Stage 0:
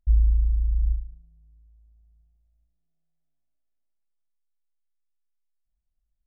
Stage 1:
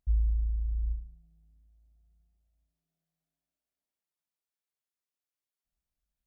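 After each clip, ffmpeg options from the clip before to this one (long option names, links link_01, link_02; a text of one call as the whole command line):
ffmpeg -i in.wav -af "highpass=frequency=120:poles=1" out.wav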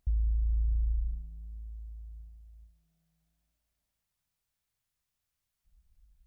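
ffmpeg -i in.wav -af "asubboost=boost=10:cutoff=110,acompressor=threshold=-27dB:ratio=10,alimiter=level_in=7dB:limit=-24dB:level=0:latency=1:release=80,volume=-7dB,volume=7.5dB" out.wav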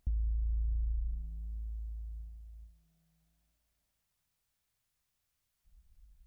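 ffmpeg -i in.wav -af "acompressor=threshold=-35dB:ratio=3,volume=2.5dB" out.wav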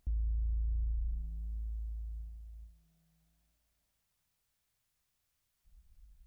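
ffmpeg -i in.wav -af "alimiter=level_in=6.5dB:limit=-24dB:level=0:latency=1:release=14,volume=-6.5dB,volume=1dB" out.wav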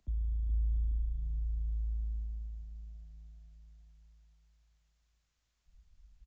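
ffmpeg -i in.wav -filter_complex "[0:a]acrossover=split=110|120|160[link_01][link_02][link_03][link_04];[link_02]acrusher=samples=13:mix=1:aa=0.000001[link_05];[link_01][link_05][link_03][link_04]amix=inputs=4:normalize=0,aecho=1:1:422|844|1266|1688|2110|2532|2954:0.562|0.309|0.17|0.0936|0.0515|0.0283|0.0156,aresample=16000,aresample=44100" out.wav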